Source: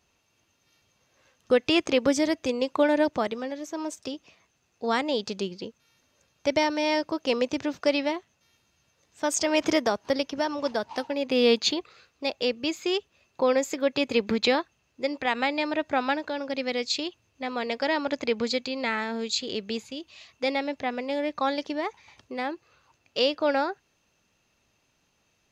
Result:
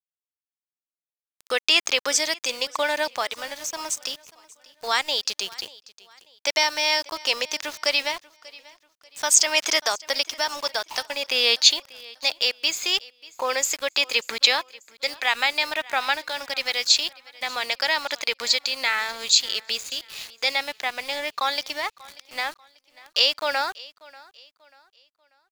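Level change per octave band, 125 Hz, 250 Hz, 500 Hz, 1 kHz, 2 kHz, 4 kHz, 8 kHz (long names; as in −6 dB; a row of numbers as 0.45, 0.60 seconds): below −10 dB, −15.5 dB, −5.5 dB, +1.5 dB, +7.0 dB, +10.0 dB, +13.0 dB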